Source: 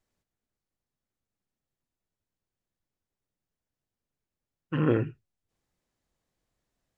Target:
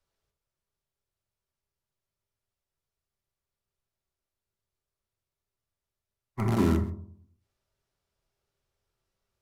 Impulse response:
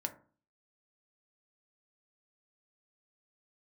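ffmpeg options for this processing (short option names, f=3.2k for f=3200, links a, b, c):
-filter_complex "[0:a]acrossover=split=210|420[a][b][c];[b]acrusher=bits=6:dc=4:mix=0:aa=0.000001[d];[a][d][c]amix=inputs=3:normalize=0[e];[1:a]atrim=start_sample=2205,asetrate=39690,aresample=44100[f];[e][f]afir=irnorm=-1:irlink=0,asetrate=32667,aresample=44100"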